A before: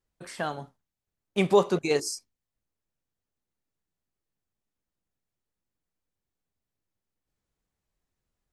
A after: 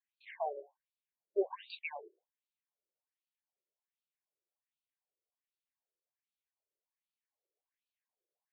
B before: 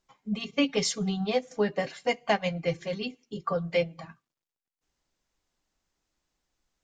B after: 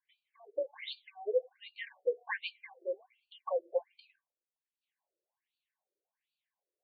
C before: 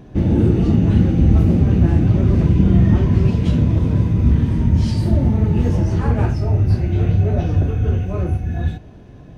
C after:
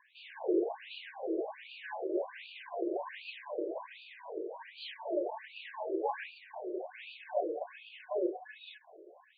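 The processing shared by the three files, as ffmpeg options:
-af "asuperstop=centerf=1300:order=12:qfactor=3.5,afftfilt=real='re*between(b*sr/1024,430*pow(3400/430,0.5+0.5*sin(2*PI*1.3*pts/sr))/1.41,430*pow(3400/430,0.5+0.5*sin(2*PI*1.3*pts/sr))*1.41)':imag='im*between(b*sr/1024,430*pow(3400/430,0.5+0.5*sin(2*PI*1.3*pts/sr))/1.41,430*pow(3400/430,0.5+0.5*sin(2*PI*1.3*pts/sr))*1.41)':win_size=1024:overlap=0.75,volume=0.794"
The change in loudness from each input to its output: -13.5 LU, -8.5 LU, -22.0 LU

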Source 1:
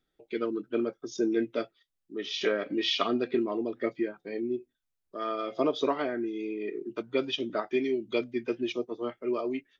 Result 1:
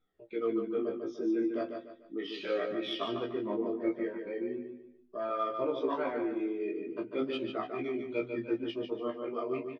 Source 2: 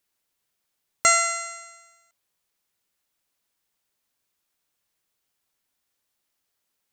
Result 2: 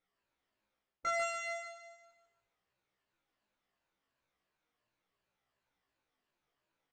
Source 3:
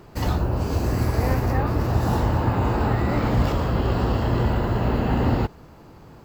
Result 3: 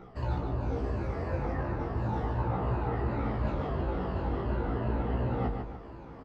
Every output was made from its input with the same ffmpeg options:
-filter_complex "[0:a]afftfilt=real='re*pow(10,11/40*sin(2*PI*(1.4*log(max(b,1)*sr/1024/100)/log(2)-(-2.8)*(pts-256)/sr)))':imag='im*pow(10,11/40*sin(2*PI*(1.4*log(max(b,1)*sr/1024/100)/log(2)-(-2.8)*(pts-256)/sr)))':win_size=1024:overlap=0.75,bandreject=f=50:t=h:w=6,bandreject=f=100:t=h:w=6,bandreject=f=150:t=h:w=6,bandreject=f=200:t=h:w=6,bandreject=f=250:t=h:w=6,bandreject=f=300:t=h:w=6,areverse,acompressor=threshold=0.0355:ratio=5,areverse,flanger=delay=16.5:depth=4.6:speed=0.37,asplit=2[s0][s1];[s1]adelay=15,volume=0.501[s2];[s0][s2]amix=inputs=2:normalize=0,aecho=1:1:147|294|441|588:0.501|0.175|0.0614|0.0215,adynamicsmooth=sensitivity=0.5:basefreq=2700,volume=1.19"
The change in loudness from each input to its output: -3.5 LU, -16.0 LU, -9.5 LU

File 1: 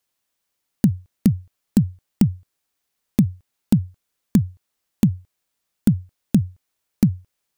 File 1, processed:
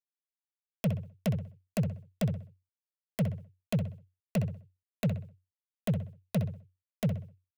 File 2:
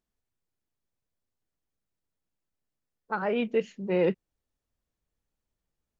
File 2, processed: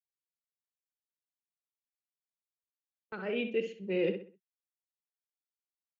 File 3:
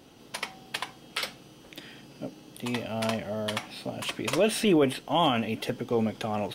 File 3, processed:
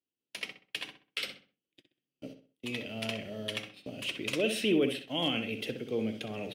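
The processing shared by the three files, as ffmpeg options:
-filter_complex "[0:a]highpass=f=62:p=1,agate=range=0.0126:threshold=0.0112:ratio=16:detection=peak,aeval=exprs='0.224*(abs(mod(val(0)/0.224+3,4)-2)-1)':c=same,firequalizer=gain_entry='entry(110,0);entry(870,-28);entry(2700,0)':delay=0.05:min_phase=1,acontrast=64,acrossover=split=350 2100:gain=0.141 1 0.141[s0][s1][s2];[s0][s1][s2]amix=inputs=3:normalize=0,asplit=2[s3][s4];[s4]adelay=64,lowpass=f=3400:p=1,volume=0.422,asplit=2[s5][s6];[s6]adelay=64,lowpass=f=3400:p=1,volume=0.34,asplit=2[s7][s8];[s8]adelay=64,lowpass=f=3400:p=1,volume=0.34,asplit=2[s9][s10];[s10]adelay=64,lowpass=f=3400:p=1,volume=0.34[s11];[s3][s5][s7][s9][s11]amix=inputs=5:normalize=0,volume=1.41"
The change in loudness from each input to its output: -12.0 LU, -5.5 LU, -5.0 LU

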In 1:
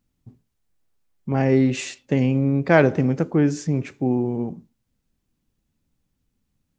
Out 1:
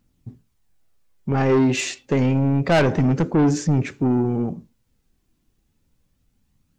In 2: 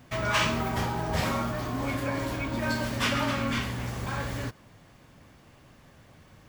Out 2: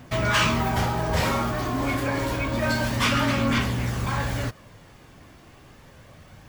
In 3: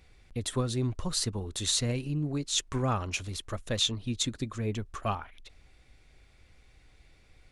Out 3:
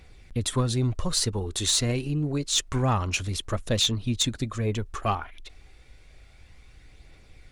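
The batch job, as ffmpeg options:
-af "aphaser=in_gain=1:out_gain=1:delay=3:decay=0.26:speed=0.28:type=triangular,asoftclip=type=tanh:threshold=0.119,volume=1.88"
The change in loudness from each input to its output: +1.0 LU, +5.0 LU, +5.0 LU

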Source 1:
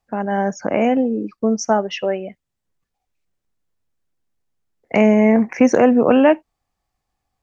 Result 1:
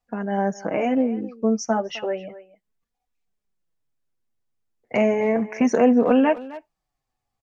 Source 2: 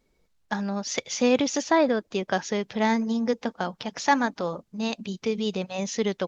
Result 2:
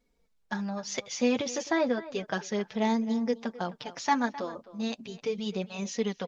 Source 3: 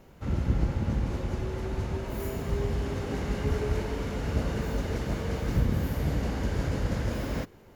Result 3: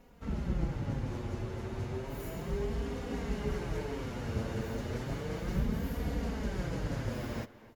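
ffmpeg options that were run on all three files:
-filter_complex "[0:a]flanger=delay=4.1:depth=4.8:regen=-6:speed=0.33:shape=sinusoidal,asplit=2[s0][s1];[s1]adelay=260,highpass=300,lowpass=3400,asoftclip=type=hard:threshold=0.266,volume=0.158[s2];[s0][s2]amix=inputs=2:normalize=0,volume=0.794"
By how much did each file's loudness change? -5.0 LU, -4.5 LU, -6.0 LU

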